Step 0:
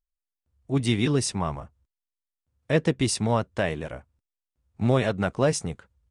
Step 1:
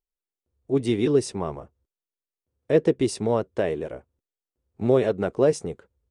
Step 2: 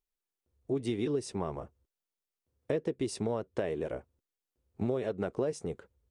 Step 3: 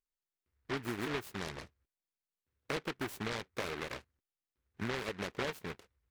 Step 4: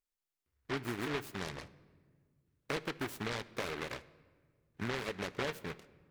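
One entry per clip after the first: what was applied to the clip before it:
peaking EQ 410 Hz +14.5 dB 1.2 oct; trim -6.5 dB
compression 6:1, threshold -29 dBFS, peak gain reduction 15 dB
delay time shaken by noise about 1.4 kHz, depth 0.3 ms; trim -6 dB
simulated room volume 2300 m³, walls mixed, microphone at 0.3 m

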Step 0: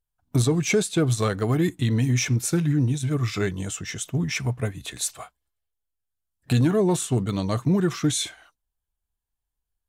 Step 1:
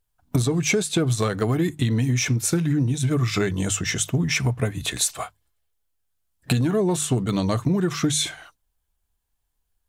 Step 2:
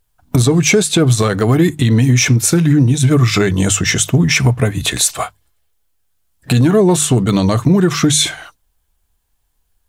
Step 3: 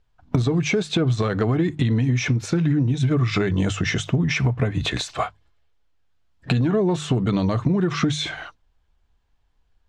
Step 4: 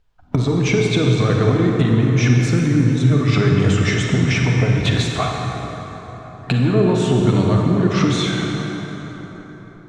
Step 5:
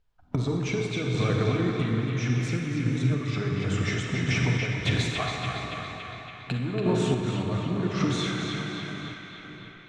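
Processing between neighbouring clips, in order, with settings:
hum notches 50/100/150 Hz; compression, threshold -27 dBFS, peak gain reduction 11 dB; trim +8.5 dB
loudness maximiser +12 dB; trim -1.5 dB
compression, threshold -17 dBFS, peak gain reduction 10 dB; distance through air 170 m
reverberation RT60 4.4 s, pre-delay 33 ms, DRR -0.5 dB; trim +1.5 dB
random-step tremolo; band-passed feedback delay 282 ms, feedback 73%, band-pass 2.3 kHz, level -3 dB; trim -7 dB

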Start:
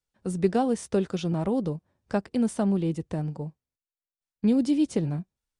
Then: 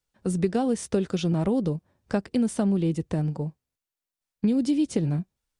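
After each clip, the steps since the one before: dynamic bell 890 Hz, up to -4 dB, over -41 dBFS, Q 0.99; compression, threshold -24 dBFS, peak gain reduction 7.5 dB; trim +4.5 dB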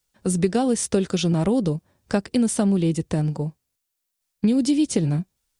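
treble shelf 3.6 kHz +8.5 dB; trim +3.5 dB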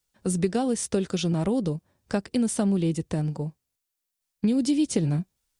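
gain riding 2 s; trim -5 dB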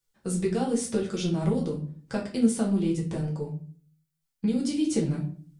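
flange 0.94 Hz, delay 7.2 ms, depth 9.6 ms, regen +53%; simulated room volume 33 m³, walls mixed, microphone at 0.68 m; trim -2 dB

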